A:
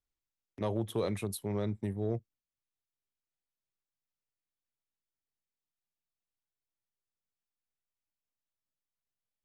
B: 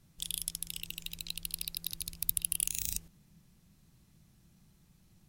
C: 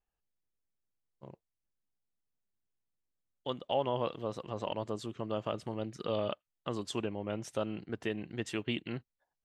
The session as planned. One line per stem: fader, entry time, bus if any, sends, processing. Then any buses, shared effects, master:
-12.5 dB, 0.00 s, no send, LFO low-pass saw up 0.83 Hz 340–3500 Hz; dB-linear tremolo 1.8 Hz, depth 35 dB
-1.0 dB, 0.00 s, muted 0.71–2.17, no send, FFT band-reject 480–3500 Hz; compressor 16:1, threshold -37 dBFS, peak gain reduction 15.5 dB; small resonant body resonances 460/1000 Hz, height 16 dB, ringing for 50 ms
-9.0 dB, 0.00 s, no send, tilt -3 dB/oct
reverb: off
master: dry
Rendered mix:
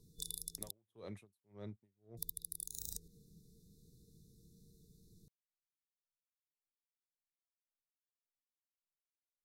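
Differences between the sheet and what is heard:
stem A: missing LFO low-pass saw up 0.83 Hz 340–3500 Hz; stem C: muted

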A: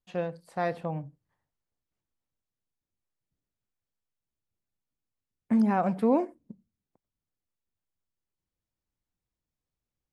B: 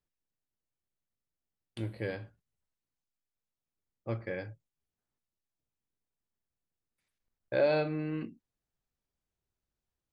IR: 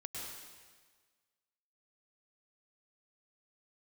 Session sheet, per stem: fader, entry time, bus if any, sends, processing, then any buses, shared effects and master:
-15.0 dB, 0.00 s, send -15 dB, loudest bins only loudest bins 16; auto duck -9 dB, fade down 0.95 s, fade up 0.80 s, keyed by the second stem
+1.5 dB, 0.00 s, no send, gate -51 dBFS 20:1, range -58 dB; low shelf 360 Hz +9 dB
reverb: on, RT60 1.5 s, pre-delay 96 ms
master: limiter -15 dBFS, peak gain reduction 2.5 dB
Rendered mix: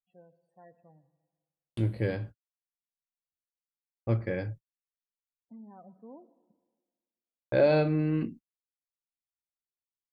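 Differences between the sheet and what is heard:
stem A -15.0 dB -> -26.0 dB; master: missing limiter -15 dBFS, peak gain reduction 2.5 dB

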